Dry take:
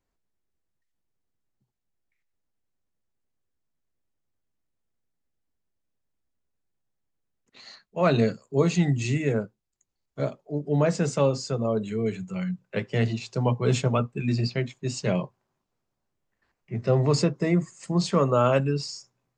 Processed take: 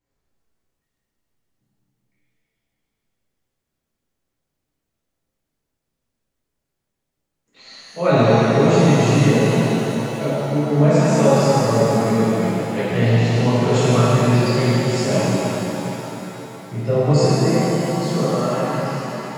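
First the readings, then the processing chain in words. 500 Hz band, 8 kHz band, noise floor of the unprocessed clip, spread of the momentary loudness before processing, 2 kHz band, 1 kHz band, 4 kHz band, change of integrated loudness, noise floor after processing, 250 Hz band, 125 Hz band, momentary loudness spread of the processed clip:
+8.5 dB, +9.0 dB, -81 dBFS, 10 LU, +9.5 dB, +10.5 dB, +8.5 dB, +8.5 dB, -79 dBFS, +9.0 dB, +8.5 dB, 10 LU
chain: ending faded out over 2.84 s; shimmer reverb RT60 3.8 s, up +7 st, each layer -8 dB, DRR -11.5 dB; gain -3 dB

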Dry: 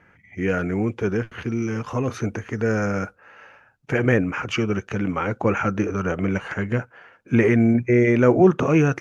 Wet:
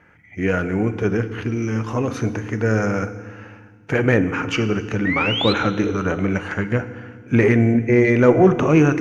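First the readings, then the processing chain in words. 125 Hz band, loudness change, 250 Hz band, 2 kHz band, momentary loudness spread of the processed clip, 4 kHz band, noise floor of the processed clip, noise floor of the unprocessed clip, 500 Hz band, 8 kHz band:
+3.0 dB, +2.5 dB, +2.0 dB, +3.5 dB, 11 LU, +11.0 dB, -48 dBFS, -58 dBFS, +2.5 dB, n/a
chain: painted sound rise, 5.05–5.53, 1800–4200 Hz -26 dBFS; FDN reverb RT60 1.6 s, low-frequency decay 1.55×, high-frequency decay 0.95×, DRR 10 dB; added harmonics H 6 -32 dB, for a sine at -3.5 dBFS; gain +2 dB

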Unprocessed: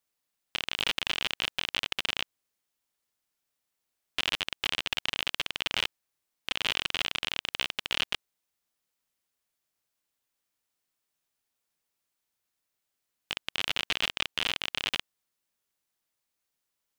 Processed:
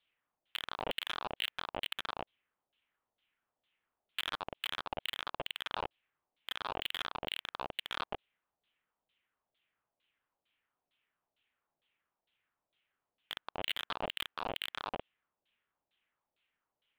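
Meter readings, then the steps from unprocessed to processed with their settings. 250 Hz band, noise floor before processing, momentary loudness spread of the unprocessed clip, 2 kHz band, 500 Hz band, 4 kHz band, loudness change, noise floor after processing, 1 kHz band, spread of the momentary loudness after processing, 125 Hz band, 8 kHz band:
-4.5 dB, -84 dBFS, 6 LU, -9.5 dB, +0.5 dB, -10.0 dB, -8.5 dB, under -85 dBFS, 0.0 dB, 7 LU, -6.0 dB, -14.0 dB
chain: LFO low-pass saw down 2.2 Hz 590–3900 Hz; wavefolder -24 dBFS; resonant high shelf 4300 Hz -11 dB, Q 3

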